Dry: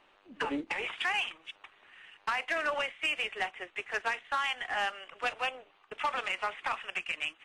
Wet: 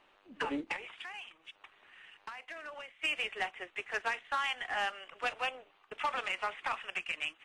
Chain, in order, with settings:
0:00.76–0:03.04: downward compressor 3 to 1, threshold −45 dBFS, peak gain reduction 13 dB
level −2 dB

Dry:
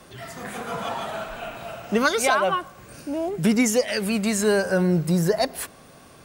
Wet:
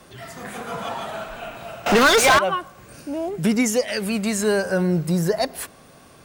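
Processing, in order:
0:01.86–0:02.39: mid-hump overdrive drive 32 dB, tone 4,300 Hz, clips at −8 dBFS

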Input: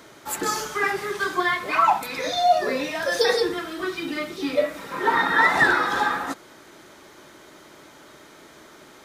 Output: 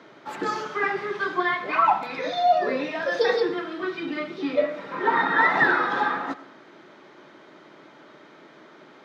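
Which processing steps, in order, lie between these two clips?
high-pass filter 140 Hz 24 dB per octave
high-frequency loss of the air 230 metres
convolution reverb RT60 0.60 s, pre-delay 55 ms, DRR 15.5 dB

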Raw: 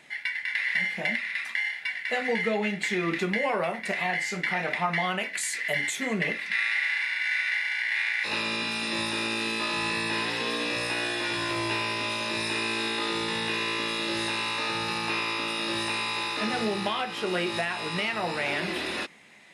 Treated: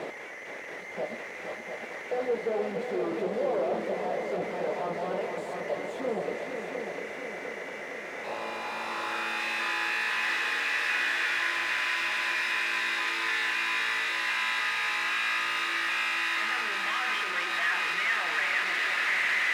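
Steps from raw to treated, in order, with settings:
sign of each sample alone
band-pass filter sweep 490 Hz → 1,800 Hz, 0:08.03–0:09.47
echo machine with several playback heads 234 ms, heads second and third, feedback 66%, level −7.5 dB
level +6 dB

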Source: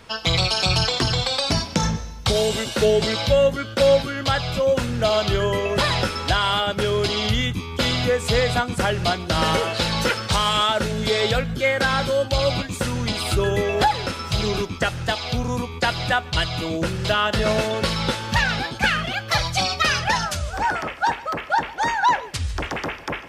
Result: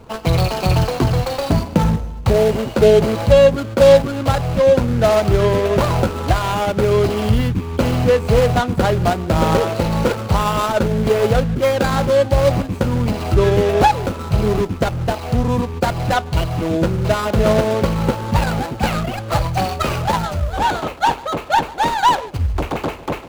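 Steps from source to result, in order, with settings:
running median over 25 samples
level +7.5 dB

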